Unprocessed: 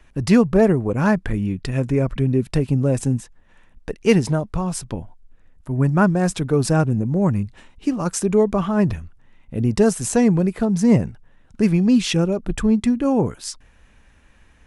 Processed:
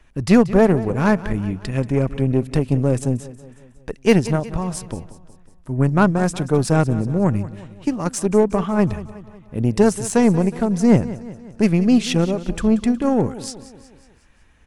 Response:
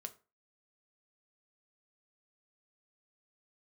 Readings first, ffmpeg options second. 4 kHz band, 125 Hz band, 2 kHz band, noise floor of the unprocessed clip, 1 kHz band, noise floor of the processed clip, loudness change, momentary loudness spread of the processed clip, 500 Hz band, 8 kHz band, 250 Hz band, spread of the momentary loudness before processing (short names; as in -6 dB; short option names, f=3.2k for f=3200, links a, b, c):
-0.5 dB, 0.0 dB, +1.0 dB, -53 dBFS, +2.0 dB, -50 dBFS, +0.5 dB, 15 LU, +1.0 dB, -1.0 dB, +0.5 dB, 10 LU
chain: -af "aeval=exprs='0.75*(cos(1*acos(clip(val(0)/0.75,-1,1)))-cos(1*PI/2))+0.0335*(cos(4*acos(clip(val(0)/0.75,-1,1)))-cos(4*PI/2))+0.0299*(cos(7*acos(clip(val(0)/0.75,-1,1)))-cos(7*PI/2))':c=same,aecho=1:1:183|366|549|732|915:0.158|0.084|0.0445|0.0236|0.0125,volume=1dB"